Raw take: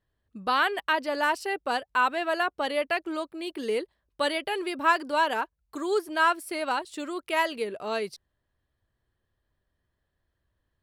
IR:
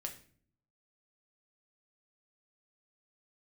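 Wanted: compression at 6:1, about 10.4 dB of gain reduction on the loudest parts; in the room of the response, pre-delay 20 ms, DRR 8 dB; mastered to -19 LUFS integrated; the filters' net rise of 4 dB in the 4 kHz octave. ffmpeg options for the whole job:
-filter_complex "[0:a]equalizer=f=4000:t=o:g=5.5,acompressor=threshold=0.0398:ratio=6,asplit=2[s0][s1];[1:a]atrim=start_sample=2205,adelay=20[s2];[s1][s2]afir=irnorm=-1:irlink=0,volume=0.473[s3];[s0][s3]amix=inputs=2:normalize=0,volume=4.47"

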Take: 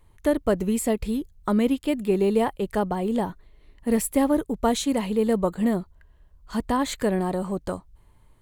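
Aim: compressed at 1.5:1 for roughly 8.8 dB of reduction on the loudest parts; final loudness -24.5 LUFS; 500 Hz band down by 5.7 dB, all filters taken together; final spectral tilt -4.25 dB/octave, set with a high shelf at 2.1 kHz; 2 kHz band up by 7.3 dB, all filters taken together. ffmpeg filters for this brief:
-af "equalizer=f=500:t=o:g=-8,equalizer=f=2000:t=o:g=5.5,highshelf=f=2100:g=7,acompressor=threshold=0.00631:ratio=1.5,volume=2.99"

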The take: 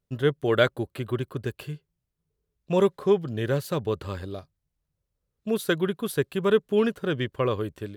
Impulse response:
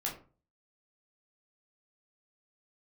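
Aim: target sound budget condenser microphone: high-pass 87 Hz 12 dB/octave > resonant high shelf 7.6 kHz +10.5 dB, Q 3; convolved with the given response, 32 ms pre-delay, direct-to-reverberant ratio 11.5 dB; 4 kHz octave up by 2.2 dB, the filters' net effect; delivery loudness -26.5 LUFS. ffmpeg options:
-filter_complex "[0:a]equalizer=f=4000:t=o:g=5.5,asplit=2[s0][s1];[1:a]atrim=start_sample=2205,adelay=32[s2];[s1][s2]afir=irnorm=-1:irlink=0,volume=0.188[s3];[s0][s3]amix=inputs=2:normalize=0,highpass=87,highshelf=f=7600:t=q:w=3:g=10.5,volume=0.891"

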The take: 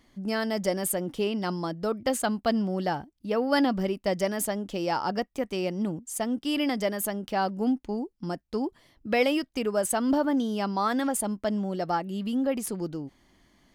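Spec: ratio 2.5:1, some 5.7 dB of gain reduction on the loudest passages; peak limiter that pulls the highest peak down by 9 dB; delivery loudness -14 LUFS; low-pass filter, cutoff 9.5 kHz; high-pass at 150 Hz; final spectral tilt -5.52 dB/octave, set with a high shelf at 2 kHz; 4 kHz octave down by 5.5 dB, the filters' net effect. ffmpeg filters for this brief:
-af "highpass=150,lowpass=9500,highshelf=f=2000:g=-4,equalizer=f=4000:t=o:g=-3.5,acompressor=threshold=0.0355:ratio=2.5,volume=11.9,alimiter=limit=0.562:level=0:latency=1"

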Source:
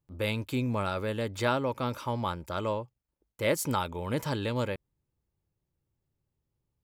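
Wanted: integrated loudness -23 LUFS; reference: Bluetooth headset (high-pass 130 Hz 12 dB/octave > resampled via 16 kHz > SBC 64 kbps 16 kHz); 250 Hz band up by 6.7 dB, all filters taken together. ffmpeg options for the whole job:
-af "highpass=130,equalizer=f=250:t=o:g=8,aresample=16000,aresample=44100,volume=2" -ar 16000 -c:a sbc -b:a 64k

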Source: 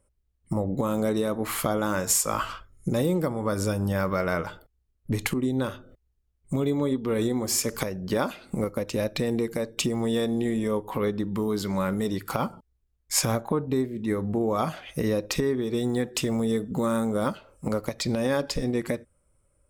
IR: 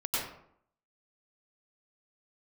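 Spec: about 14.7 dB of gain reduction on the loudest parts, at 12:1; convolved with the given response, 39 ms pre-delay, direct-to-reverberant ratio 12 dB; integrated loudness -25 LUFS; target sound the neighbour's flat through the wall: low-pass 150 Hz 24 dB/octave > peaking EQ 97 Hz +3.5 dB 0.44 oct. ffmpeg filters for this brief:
-filter_complex "[0:a]acompressor=threshold=0.0158:ratio=12,asplit=2[s0][s1];[1:a]atrim=start_sample=2205,adelay=39[s2];[s1][s2]afir=irnorm=-1:irlink=0,volume=0.112[s3];[s0][s3]amix=inputs=2:normalize=0,lowpass=f=150:w=0.5412,lowpass=f=150:w=1.3066,equalizer=f=97:t=o:w=0.44:g=3.5,volume=15"

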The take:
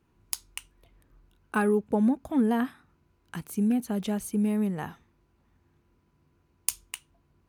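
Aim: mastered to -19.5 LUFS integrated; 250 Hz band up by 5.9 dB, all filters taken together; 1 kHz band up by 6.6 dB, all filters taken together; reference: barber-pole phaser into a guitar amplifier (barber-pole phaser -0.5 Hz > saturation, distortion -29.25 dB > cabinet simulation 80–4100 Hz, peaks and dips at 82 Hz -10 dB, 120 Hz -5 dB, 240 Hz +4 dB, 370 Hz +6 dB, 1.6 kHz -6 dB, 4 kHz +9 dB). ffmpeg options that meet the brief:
-filter_complex "[0:a]equalizer=f=250:t=o:g=3.5,equalizer=f=1000:t=o:g=8.5,asplit=2[s0][s1];[s1]afreqshift=-0.5[s2];[s0][s2]amix=inputs=2:normalize=1,asoftclip=threshold=0.335,highpass=80,equalizer=f=82:t=q:w=4:g=-10,equalizer=f=120:t=q:w=4:g=-5,equalizer=f=240:t=q:w=4:g=4,equalizer=f=370:t=q:w=4:g=6,equalizer=f=1600:t=q:w=4:g=-6,equalizer=f=4000:t=q:w=4:g=9,lowpass=f=4100:w=0.5412,lowpass=f=4100:w=1.3066,volume=1.88"

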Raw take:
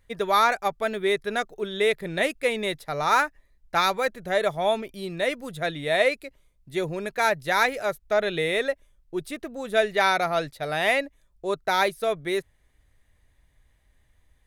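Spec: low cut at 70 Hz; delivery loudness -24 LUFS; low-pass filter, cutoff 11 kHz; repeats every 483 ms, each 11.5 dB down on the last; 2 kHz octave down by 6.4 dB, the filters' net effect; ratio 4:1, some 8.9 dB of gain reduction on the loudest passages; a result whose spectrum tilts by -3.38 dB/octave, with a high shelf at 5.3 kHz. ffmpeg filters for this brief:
-af "highpass=70,lowpass=11000,equalizer=f=2000:t=o:g=-7.5,highshelf=f=5300:g=-5,acompressor=threshold=0.0355:ratio=4,aecho=1:1:483|966|1449:0.266|0.0718|0.0194,volume=2.99"

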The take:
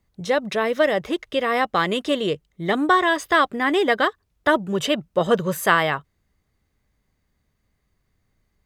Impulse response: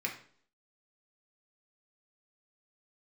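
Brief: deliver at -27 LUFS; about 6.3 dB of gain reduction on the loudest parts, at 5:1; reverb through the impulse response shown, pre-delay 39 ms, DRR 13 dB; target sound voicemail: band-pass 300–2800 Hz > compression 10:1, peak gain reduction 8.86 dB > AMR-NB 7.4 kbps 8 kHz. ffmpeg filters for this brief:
-filter_complex "[0:a]acompressor=threshold=0.112:ratio=5,asplit=2[s0][s1];[1:a]atrim=start_sample=2205,adelay=39[s2];[s1][s2]afir=irnorm=-1:irlink=0,volume=0.141[s3];[s0][s3]amix=inputs=2:normalize=0,highpass=300,lowpass=2800,acompressor=threshold=0.0562:ratio=10,volume=1.78" -ar 8000 -c:a libopencore_amrnb -b:a 7400

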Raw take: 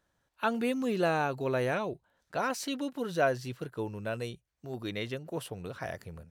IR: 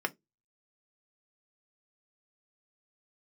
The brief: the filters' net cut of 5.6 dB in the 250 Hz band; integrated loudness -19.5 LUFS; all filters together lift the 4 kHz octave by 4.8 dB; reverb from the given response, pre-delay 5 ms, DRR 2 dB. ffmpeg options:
-filter_complex "[0:a]equalizer=f=250:t=o:g=-7,equalizer=f=4000:t=o:g=6,asplit=2[s0][s1];[1:a]atrim=start_sample=2205,adelay=5[s2];[s1][s2]afir=irnorm=-1:irlink=0,volume=0.376[s3];[s0][s3]amix=inputs=2:normalize=0,volume=4.47"

